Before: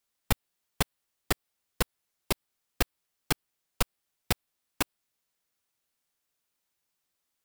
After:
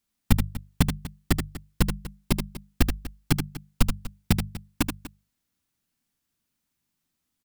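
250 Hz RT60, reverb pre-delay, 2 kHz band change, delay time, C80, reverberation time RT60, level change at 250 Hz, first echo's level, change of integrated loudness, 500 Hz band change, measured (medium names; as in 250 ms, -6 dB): no reverb, no reverb, +0.5 dB, 79 ms, no reverb, no reverb, +11.5 dB, -6.5 dB, +5.0 dB, +0.5 dB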